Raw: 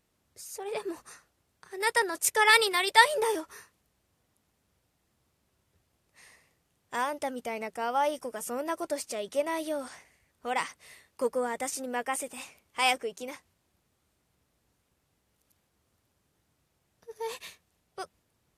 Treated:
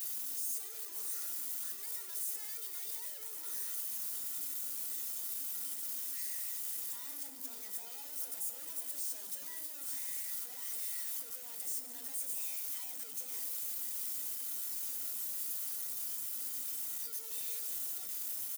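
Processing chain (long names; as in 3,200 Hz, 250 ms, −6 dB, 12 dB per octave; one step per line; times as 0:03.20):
sign of each sample alone
high-pass filter 110 Hz 24 dB per octave
comb filter 4.2 ms, depth 55%
convolution reverb RT60 2.2 s, pre-delay 31 ms, DRR 14 dB
soft clipping −36.5 dBFS, distortion −9 dB
RIAA equalisation recording
brickwall limiter −27 dBFS, peak gain reduction 9.5 dB
high-shelf EQ 5,100 Hz +10 dB
tuned comb filter 280 Hz, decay 0.34 s, harmonics odd, mix 80%
echo through a band-pass that steps 138 ms, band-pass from 240 Hz, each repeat 0.7 octaves, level 0 dB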